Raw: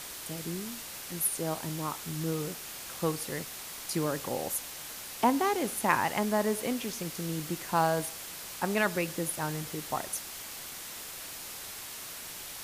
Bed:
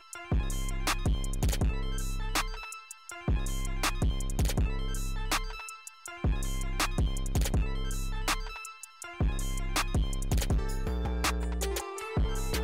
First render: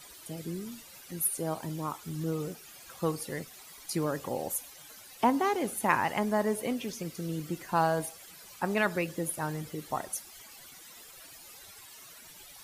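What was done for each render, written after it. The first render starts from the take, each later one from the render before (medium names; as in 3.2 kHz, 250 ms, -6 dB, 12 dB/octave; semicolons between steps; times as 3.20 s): noise reduction 14 dB, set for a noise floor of -43 dBFS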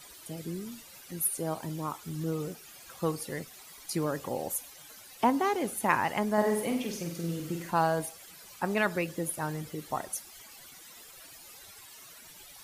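6.33–7.71 s: flutter echo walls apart 8.1 m, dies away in 0.55 s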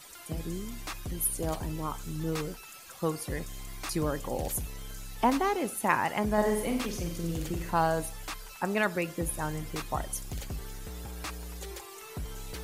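add bed -9.5 dB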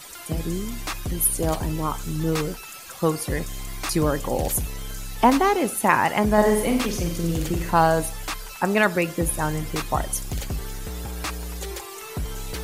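trim +8.5 dB; peak limiter -3 dBFS, peak gain reduction 2.5 dB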